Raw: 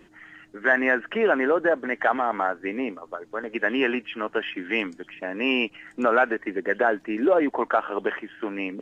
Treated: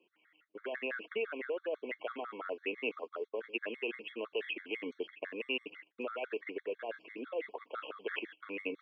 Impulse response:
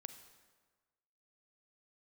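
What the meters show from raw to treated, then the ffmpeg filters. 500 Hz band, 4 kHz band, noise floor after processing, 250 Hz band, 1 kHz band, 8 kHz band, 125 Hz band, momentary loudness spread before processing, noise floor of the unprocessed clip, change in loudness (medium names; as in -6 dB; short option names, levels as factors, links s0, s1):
-14.0 dB, -9.5 dB, -75 dBFS, -18.0 dB, -20.5 dB, no reading, under -20 dB, 11 LU, -55 dBFS, -15.0 dB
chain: -filter_complex "[0:a]agate=range=0.0794:threshold=0.01:ratio=16:detection=peak,areverse,acompressor=threshold=0.0224:ratio=5,areverse,highpass=400,equalizer=f=450:t=q:w=4:g=7,equalizer=f=800:t=q:w=4:g=-5,equalizer=f=1800:t=q:w=4:g=-8,equalizer=f=2700:t=q:w=4:g=9,lowpass=f=4000:w=0.5412,lowpass=f=4000:w=1.3066,acrossover=split=610|1900[s0][s1][s2];[s0]acompressor=threshold=0.00794:ratio=4[s3];[s1]acompressor=threshold=0.00224:ratio=4[s4];[s2]acompressor=threshold=0.01:ratio=4[s5];[s3][s4][s5]amix=inputs=3:normalize=0,afftfilt=real='re*gt(sin(2*PI*6*pts/sr)*(1-2*mod(floor(b*sr/1024/1100),2)),0)':imag='im*gt(sin(2*PI*6*pts/sr)*(1-2*mod(floor(b*sr/1024/1100),2)),0)':win_size=1024:overlap=0.75,volume=2"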